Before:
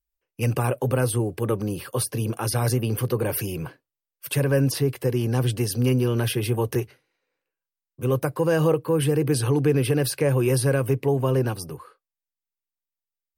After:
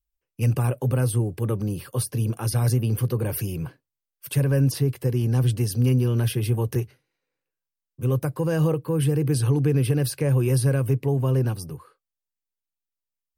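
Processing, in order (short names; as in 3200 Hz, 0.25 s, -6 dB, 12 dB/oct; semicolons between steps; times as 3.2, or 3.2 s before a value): tone controls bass +9 dB, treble +3 dB; gain -5.5 dB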